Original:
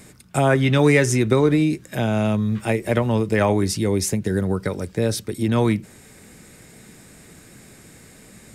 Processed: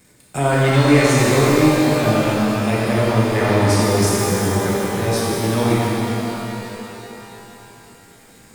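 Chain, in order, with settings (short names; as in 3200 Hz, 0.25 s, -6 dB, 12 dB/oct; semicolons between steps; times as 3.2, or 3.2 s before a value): sample leveller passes 2; shimmer reverb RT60 3.4 s, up +12 st, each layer -8 dB, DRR -6.5 dB; gain -10 dB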